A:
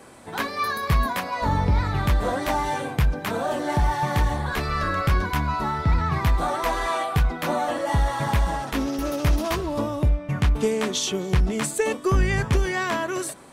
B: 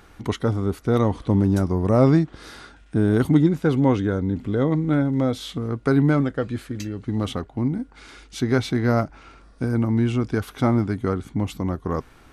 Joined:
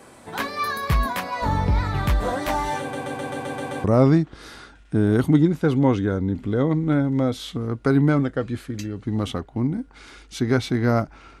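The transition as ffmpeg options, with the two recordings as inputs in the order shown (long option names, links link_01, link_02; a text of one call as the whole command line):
ffmpeg -i cue0.wav -i cue1.wav -filter_complex "[0:a]apad=whole_dur=11.4,atrim=end=11.4,asplit=8[link_01][link_02][link_03][link_04][link_05][link_06][link_07][link_08];[link_01]atrim=end=2.932[link_09];[link_02]atrim=start=2.798:end=2.932[link_10];[link_03]atrim=start=2.798:end=2.932[link_11];[link_04]atrim=start=2.798:end=2.932[link_12];[link_05]atrim=start=2.798:end=2.932[link_13];[link_06]atrim=start=2.798:end=2.932[link_14];[link_07]atrim=start=2.798:end=2.932[link_15];[link_08]atrim=start=2.798:end=2.932[link_16];[1:a]atrim=start=1.848:end=9.41[link_17];[link_09][link_10]acrossfade=duration=0.004:curve1=hsin:curve2=hsin[link_18];[link_18][link_11]acrossfade=duration=0.004:curve1=hsin:curve2=hsin[link_19];[link_19][link_12]acrossfade=duration=0.004:curve1=hsin:curve2=hsin[link_20];[link_20][link_13]acrossfade=duration=0.004:curve1=hsin:curve2=hsin[link_21];[link_21][link_14]acrossfade=duration=0.004:curve1=hsin:curve2=hsin[link_22];[link_22][link_15]acrossfade=duration=0.004:curve1=hsin:curve2=hsin[link_23];[link_23][link_16]acrossfade=duration=0.004:curve1=hsin:curve2=hsin[link_24];[link_24][link_17]acrossfade=duration=0.004:curve1=hsin:curve2=hsin" out.wav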